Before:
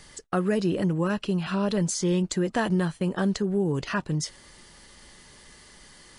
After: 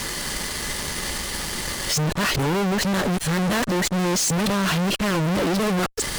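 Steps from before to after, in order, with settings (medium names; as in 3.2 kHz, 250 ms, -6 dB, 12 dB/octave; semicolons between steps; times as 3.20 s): reverse the whole clip; fuzz box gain 51 dB, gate -53 dBFS; trim -7.5 dB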